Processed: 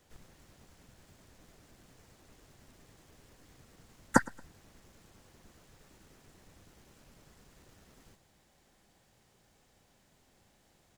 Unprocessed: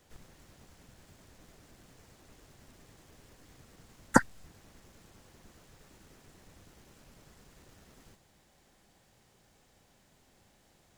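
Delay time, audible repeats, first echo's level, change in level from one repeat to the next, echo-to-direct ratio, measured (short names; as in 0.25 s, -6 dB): 0.113 s, 2, -23.0 dB, -9.5 dB, -22.5 dB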